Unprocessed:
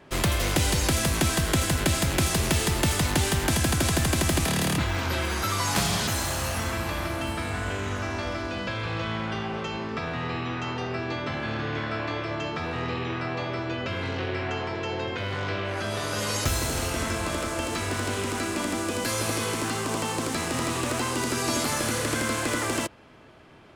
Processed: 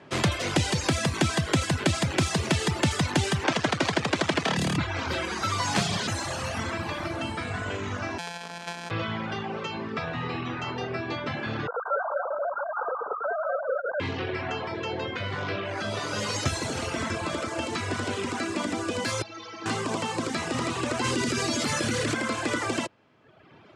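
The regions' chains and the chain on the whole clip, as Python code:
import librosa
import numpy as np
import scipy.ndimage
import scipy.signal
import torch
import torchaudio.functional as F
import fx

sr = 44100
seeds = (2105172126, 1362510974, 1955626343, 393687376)

y = fx.chain(x, sr, fx.halfwave_hold(),
    fx.highpass(hz=470.0, slope=6),
    fx.air_absorb(metres=59.0), at=(3.44, 4.57))
y = fx.chain(y, sr, fx.sample_sort(block=256),
    fx.highpass(hz=790.0, slope=6),
    fx.comb(ms=4.6, depth=0.85), at=(8.18, 8.91))
y = fx.chain(y, sr, fx.sine_speech(),
    fx.brickwall_lowpass(high_hz=1600.0),
    fx.echo_multitap(ms=(164, 193, 200), db=(-18.0, -4.0, -9.0)), at=(11.67, 14.0))
y = fx.chain(y, sr, fx.delta_mod(bps=32000, step_db=-29.5),
    fx.low_shelf(hz=450.0, db=-5.5),
    fx.stiff_resonator(f0_hz=97.0, decay_s=0.23, stiffness=0.03), at=(19.22, 19.66))
y = fx.chain(y, sr, fx.peak_eq(hz=880.0, db=-5.5, octaves=1.3),
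    fx.env_flatten(amount_pct=100), at=(21.04, 22.14))
y = scipy.signal.sosfilt(scipy.signal.butter(4, 88.0, 'highpass', fs=sr, output='sos'), y)
y = fx.dereverb_blind(y, sr, rt60_s=1.1)
y = scipy.signal.sosfilt(scipy.signal.bessel(4, 6300.0, 'lowpass', norm='mag', fs=sr, output='sos'), y)
y = y * librosa.db_to_amplitude(2.0)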